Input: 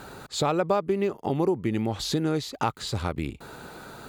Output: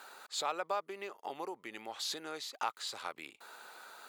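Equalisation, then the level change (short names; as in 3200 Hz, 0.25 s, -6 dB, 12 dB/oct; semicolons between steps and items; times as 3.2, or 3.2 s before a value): HPF 830 Hz 12 dB/oct; -6.0 dB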